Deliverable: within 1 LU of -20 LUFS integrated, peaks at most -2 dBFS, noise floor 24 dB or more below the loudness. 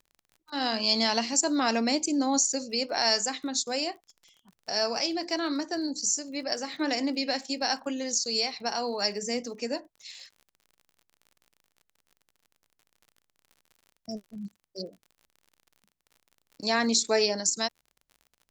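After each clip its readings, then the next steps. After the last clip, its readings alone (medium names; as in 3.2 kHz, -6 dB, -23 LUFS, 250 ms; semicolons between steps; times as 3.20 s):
tick rate 43 per s; loudness -27.5 LUFS; peak level -10.5 dBFS; loudness target -20.0 LUFS
-> de-click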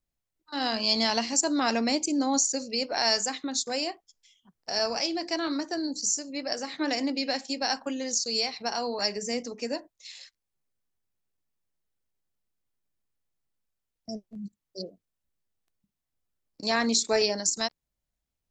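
tick rate 0.11 per s; loudness -27.5 LUFS; peak level -10.5 dBFS; loudness target -20.0 LUFS
-> trim +7.5 dB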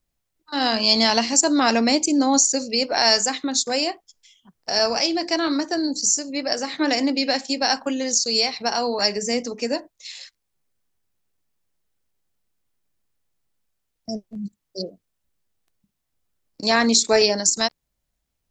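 loudness -20.0 LUFS; peak level -3.0 dBFS; noise floor -78 dBFS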